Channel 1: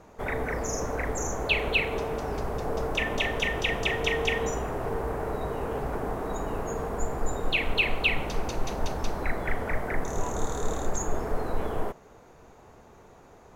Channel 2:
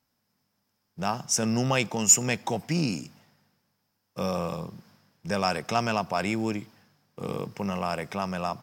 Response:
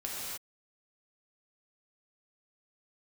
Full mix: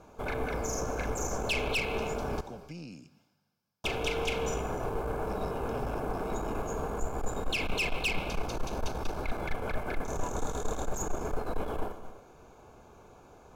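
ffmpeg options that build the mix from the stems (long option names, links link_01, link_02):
-filter_complex "[0:a]volume=-1.5dB,asplit=3[link_01][link_02][link_03];[link_01]atrim=end=2.41,asetpts=PTS-STARTPTS,afade=type=out:start_time=2.406:duration=0.004:curve=hsin[link_04];[link_02]atrim=start=2.41:end=3.84,asetpts=PTS-STARTPTS,volume=0[link_05];[link_03]atrim=start=3.84,asetpts=PTS-STARTPTS,afade=type=in:duration=0.004:curve=hsin[link_06];[link_04][link_05][link_06]concat=n=3:v=0:a=1,asplit=2[link_07][link_08];[link_08]volume=-13dB[link_09];[1:a]acrossover=split=590|4700[link_10][link_11][link_12];[link_10]acompressor=threshold=-31dB:ratio=4[link_13];[link_11]acompressor=threshold=-42dB:ratio=4[link_14];[link_12]acompressor=threshold=-54dB:ratio=4[link_15];[link_13][link_14][link_15]amix=inputs=3:normalize=0,volume=-9.5dB,asplit=2[link_16][link_17];[link_17]volume=-21dB[link_18];[2:a]atrim=start_sample=2205[link_19];[link_09][link_18]amix=inputs=2:normalize=0[link_20];[link_20][link_19]afir=irnorm=-1:irlink=0[link_21];[link_07][link_16][link_21]amix=inputs=3:normalize=0,aeval=exprs='(tanh(17.8*val(0)+0.45)-tanh(0.45))/17.8':channel_layout=same,asuperstop=centerf=1900:order=12:qfactor=6.3"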